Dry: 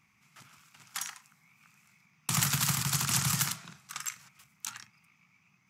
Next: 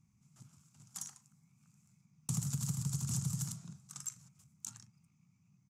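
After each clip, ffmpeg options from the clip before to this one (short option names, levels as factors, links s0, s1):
-af "firequalizer=gain_entry='entry(130,0);entry(380,-14);entry(1900,-29);entry(7000,-8);entry(15000,-22)':delay=0.05:min_phase=1,acompressor=threshold=0.0126:ratio=6,volume=1.88"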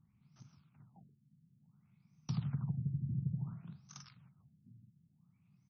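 -af "afftfilt=real='re*lt(b*sr/1024,340*pow(6500/340,0.5+0.5*sin(2*PI*0.57*pts/sr)))':imag='im*lt(b*sr/1024,340*pow(6500/340,0.5+0.5*sin(2*PI*0.57*pts/sr)))':win_size=1024:overlap=0.75"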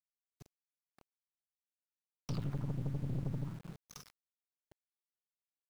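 -af "aeval=exprs='val(0)*gte(abs(val(0)),0.00266)':c=same,aeval=exprs='(tanh(89.1*val(0)+0.8)-tanh(0.8))/89.1':c=same,volume=2"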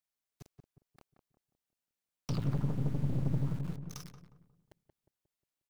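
-filter_complex "[0:a]asplit=2[s0][s1];[s1]adelay=179,lowpass=f=900:p=1,volume=0.562,asplit=2[s2][s3];[s3]adelay=179,lowpass=f=900:p=1,volume=0.47,asplit=2[s4][s5];[s5]adelay=179,lowpass=f=900:p=1,volume=0.47,asplit=2[s6][s7];[s7]adelay=179,lowpass=f=900:p=1,volume=0.47,asplit=2[s8][s9];[s9]adelay=179,lowpass=f=900:p=1,volume=0.47,asplit=2[s10][s11];[s11]adelay=179,lowpass=f=900:p=1,volume=0.47[s12];[s0][s2][s4][s6][s8][s10][s12]amix=inputs=7:normalize=0,volume=1.58"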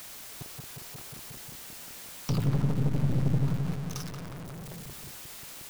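-af "aeval=exprs='val(0)+0.5*0.0106*sgn(val(0))':c=same,volume=1.68"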